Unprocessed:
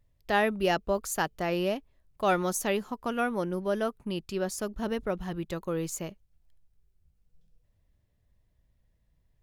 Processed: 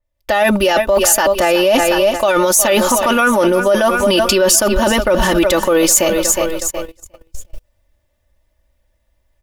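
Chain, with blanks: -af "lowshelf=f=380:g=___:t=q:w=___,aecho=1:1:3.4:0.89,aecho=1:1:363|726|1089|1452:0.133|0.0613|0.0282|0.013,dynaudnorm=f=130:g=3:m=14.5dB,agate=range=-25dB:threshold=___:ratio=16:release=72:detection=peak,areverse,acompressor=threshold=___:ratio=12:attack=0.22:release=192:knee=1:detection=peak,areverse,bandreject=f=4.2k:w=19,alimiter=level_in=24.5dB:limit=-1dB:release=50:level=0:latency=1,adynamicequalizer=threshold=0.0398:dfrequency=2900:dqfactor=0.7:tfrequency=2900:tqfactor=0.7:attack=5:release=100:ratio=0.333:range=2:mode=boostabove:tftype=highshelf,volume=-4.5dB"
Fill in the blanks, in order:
-6.5, 1.5, -46dB, -20dB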